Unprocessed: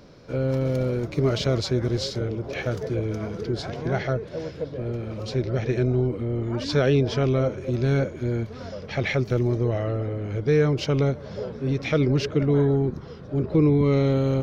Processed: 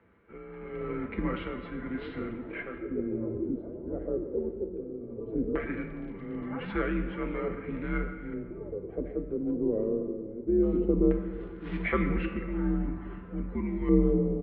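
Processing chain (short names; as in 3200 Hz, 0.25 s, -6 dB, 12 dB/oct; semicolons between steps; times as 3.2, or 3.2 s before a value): LFO low-pass square 0.18 Hz 530–2000 Hz; resonator 140 Hz, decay 0.47 s, harmonics all, mix 70%; AGC gain up to 8.5 dB; comb 6.4 ms, depth 37%; speakerphone echo 0.14 s, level -18 dB; 11.33–11.82 short-mantissa float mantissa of 2-bit; tremolo 0.92 Hz, depth 59%; 5.57–6.45 crackle 68/s -36 dBFS; shoebox room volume 2900 m³, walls mixed, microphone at 1 m; mistuned SSB -95 Hz 190–3400 Hz; gain -6 dB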